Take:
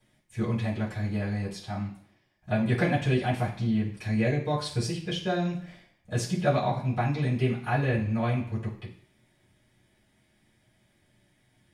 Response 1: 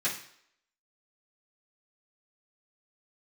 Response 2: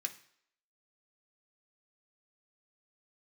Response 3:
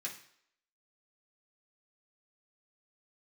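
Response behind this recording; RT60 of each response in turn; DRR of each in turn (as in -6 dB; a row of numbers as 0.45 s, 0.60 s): 1; no single decay rate, no single decay rate, no single decay rate; -12.0 dB, 4.5 dB, -4.0 dB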